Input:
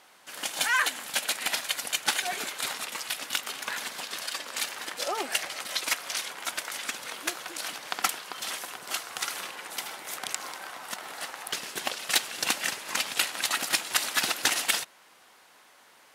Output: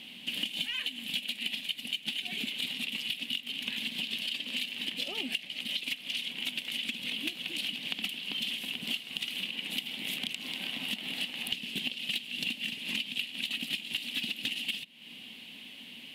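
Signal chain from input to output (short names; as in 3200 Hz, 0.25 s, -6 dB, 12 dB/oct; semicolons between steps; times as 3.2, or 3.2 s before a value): in parallel at -6 dB: hard clip -23.5 dBFS, distortion -9 dB; on the sum: EQ curve 110 Hz 0 dB, 240 Hz +12 dB, 350 Hz -7 dB, 1400 Hz -24 dB, 2900 Hz +10 dB, 5900 Hz -16 dB, 13000 Hz -9 dB; compressor 10:1, threshold -39 dBFS, peak gain reduction 24.5 dB; gain +7.5 dB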